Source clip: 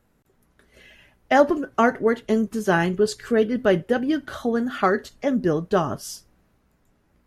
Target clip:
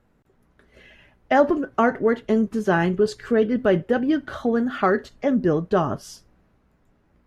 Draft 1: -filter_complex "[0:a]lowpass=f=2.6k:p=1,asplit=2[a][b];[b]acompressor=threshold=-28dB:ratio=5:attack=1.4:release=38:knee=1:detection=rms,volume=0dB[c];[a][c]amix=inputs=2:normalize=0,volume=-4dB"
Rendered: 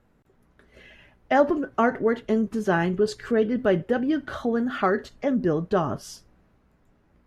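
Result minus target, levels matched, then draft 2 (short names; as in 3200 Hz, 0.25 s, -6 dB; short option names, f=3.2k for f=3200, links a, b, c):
compressor: peak gain reduction +9 dB
-filter_complex "[0:a]lowpass=f=2.6k:p=1,asplit=2[a][b];[b]acompressor=threshold=-16.5dB:ratio=5:attack=1.4:release=38:knee=1:detection=rms,volume=0dB[c];[a][c]amix=inputs=2:normalize=0,volume=-4dB"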